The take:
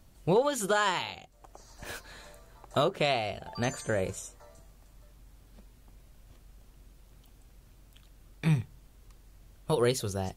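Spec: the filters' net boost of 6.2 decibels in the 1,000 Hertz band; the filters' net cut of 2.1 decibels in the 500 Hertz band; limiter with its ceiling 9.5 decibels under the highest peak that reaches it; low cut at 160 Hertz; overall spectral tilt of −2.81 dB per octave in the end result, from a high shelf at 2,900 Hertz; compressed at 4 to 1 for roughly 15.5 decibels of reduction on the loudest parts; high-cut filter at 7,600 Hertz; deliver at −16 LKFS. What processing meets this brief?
high-pass filter 160 Hz
low-pass filter 7,600 Hz
parametric band 500 Hz −5.5 dB
parametric band 1,000 Hz +8.5 dB
high-shelf EQ 2,900 Hz +8 dB
downward compressor 4 to 1, threshold −37 dBFS
level +26.5 dB
brickwall limiter −3 dBFS

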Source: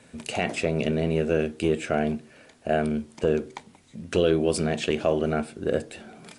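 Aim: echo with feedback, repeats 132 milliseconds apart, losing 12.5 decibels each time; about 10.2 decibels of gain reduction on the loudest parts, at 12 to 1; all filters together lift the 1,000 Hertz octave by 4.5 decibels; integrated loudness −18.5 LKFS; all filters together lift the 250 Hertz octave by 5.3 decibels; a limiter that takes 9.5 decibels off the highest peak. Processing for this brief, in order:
parametric band 250 Hz +6.5 dB
parametric band 1,000 Hz +7 dB
downward compressor 12 to 1, threshold −24 dBFS
brickwall limiter −20.5 dBFS
repeating echo 132 ms, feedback 24%, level −12.5 dB
level +14 dB

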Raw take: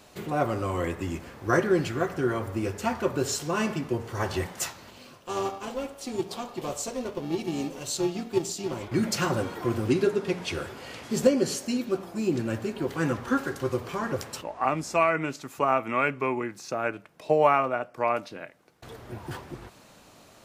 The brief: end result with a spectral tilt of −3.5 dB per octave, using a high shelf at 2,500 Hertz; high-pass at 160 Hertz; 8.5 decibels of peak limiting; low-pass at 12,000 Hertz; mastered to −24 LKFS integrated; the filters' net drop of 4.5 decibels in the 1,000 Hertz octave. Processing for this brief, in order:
high-pass filter 160 Hz
low-pass filter 12,000 Hz
parametric band 1,000 Hz −7.5 dB
high-shelf EQ 2,500 Hz +7 dB
level +6.5 dB
brickwall limiter −11 dBFS

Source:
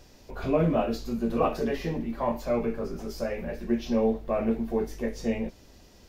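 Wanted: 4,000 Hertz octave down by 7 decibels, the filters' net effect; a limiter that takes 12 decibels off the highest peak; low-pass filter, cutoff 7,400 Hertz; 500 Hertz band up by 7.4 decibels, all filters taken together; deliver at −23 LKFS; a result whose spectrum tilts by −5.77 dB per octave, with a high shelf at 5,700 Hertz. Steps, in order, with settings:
low-pass filter 7,400 Hz
parametric band 500 Hz +9 dB
parametric band 4,000 Hz −7.5 dB
high-shelf EQ 5,700 Hz −4.5 dB
level +5.5 dB
brickwall limiter −12.5 dBFS

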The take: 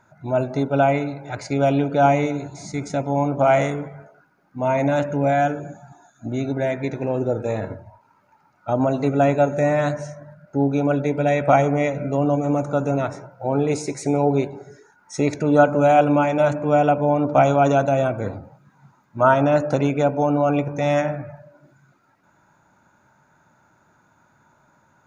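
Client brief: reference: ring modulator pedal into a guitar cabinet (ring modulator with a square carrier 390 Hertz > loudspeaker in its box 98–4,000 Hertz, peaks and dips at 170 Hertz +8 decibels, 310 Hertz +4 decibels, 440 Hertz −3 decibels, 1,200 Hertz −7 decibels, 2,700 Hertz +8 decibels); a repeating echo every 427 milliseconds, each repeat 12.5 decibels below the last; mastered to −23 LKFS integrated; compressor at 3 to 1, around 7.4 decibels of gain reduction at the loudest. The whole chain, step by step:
downward compressor 3 to 1, threshold −20 dBFS
repeating echo 427 ms, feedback 24%, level −12.5 dB
ring modulator with a square carrier 390 Hz
loudspeaker in its box 98–4,000 Hz, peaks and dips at 170 Hz +8 dB, 310 Hz +4 dB, 440 Hz −3 dB, 1,200 Hz −7 dB, 2,700 Hz +8 dB
level +0.5 dB

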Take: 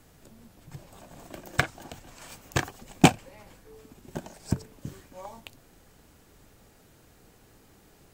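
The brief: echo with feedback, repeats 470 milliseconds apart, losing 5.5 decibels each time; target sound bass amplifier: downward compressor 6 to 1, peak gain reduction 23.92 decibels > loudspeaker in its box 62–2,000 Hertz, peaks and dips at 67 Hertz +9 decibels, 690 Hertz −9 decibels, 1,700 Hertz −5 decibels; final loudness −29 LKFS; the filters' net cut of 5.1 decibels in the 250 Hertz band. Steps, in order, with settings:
parametric band 250 Hz −7.5 dB
repeating echo 470 ms, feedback 53%, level −5.5 dB
downward compressor 6 to 1, threshold −39 dBFS
loudspeaker in its box 62–2,000 Hz, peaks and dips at 67 Hz +9 dB, 690 Hz −9 dB, 1,700 Hz −5 dB
level +20.5 dB

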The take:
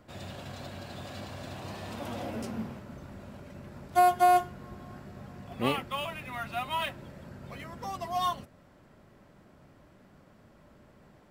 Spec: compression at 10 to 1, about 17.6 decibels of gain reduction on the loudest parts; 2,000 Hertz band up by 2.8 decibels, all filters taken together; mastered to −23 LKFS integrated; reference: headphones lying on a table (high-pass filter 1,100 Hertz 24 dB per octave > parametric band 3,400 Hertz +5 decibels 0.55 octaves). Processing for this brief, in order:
parametric band 2,000 Hz +3 dB
downward compressor 10 to 1, threshold −36 dBFS
high-pass filter 1,100 Hz 24 dB per octave
parametric band 3,400 Hz +5 dB 0.55 octaves
level +22 dB

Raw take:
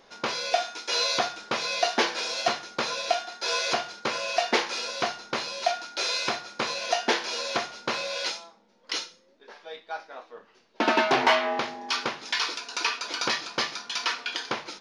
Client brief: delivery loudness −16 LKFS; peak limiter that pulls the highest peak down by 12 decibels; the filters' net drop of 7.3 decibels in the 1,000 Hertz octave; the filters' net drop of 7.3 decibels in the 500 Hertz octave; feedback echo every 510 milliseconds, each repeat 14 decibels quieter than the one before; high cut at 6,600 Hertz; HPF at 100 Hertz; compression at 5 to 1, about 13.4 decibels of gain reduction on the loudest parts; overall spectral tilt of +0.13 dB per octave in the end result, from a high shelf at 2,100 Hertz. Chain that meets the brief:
high-pass filter 100 Hz
low-pass filter 6,600 Hz
parametric band 500 Hz −7 dB
parametric band 1,000 Hz −8.5 dB
high-shelf EQ 2,100 Hz +4.5 dB
downward compressor 5 to 1, threshold −36 dBFS
brickwall limiter −30 dBFS
repeating echo 510 ms, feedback 20%, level −14 dB
level +23 dB

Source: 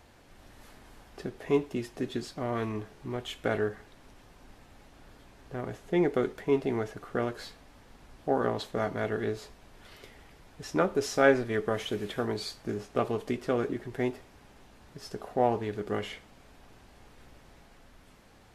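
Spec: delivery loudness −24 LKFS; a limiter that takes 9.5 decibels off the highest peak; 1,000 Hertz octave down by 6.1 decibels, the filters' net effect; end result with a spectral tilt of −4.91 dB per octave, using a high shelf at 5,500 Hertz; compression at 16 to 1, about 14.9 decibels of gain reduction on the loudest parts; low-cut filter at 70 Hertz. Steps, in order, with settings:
high-pass filter 70 Hz
parametric band 1,000 Hz −9 dB
high-shelf EQ 5,500 Hz −9 dB
downward compressor 16 to 1, threshold −33 dBFS
level +19.5 dB
brickwall limiter −12 dBFS

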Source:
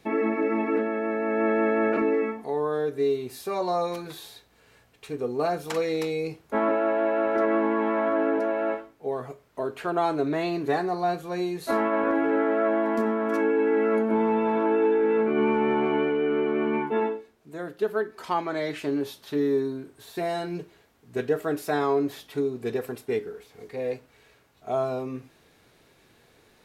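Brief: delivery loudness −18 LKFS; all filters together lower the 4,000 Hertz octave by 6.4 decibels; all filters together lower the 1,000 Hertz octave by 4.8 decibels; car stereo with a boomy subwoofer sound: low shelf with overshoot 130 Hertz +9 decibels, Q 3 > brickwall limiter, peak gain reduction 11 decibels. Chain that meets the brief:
low shelf with overshoot 130 Hz +9 dB, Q 3
parametric band 1,000 Hz −6 dB
parametric band 4,000 Hz −7.5 dB
level +17.5 dB
brickwall limiter −9.5 dBFS

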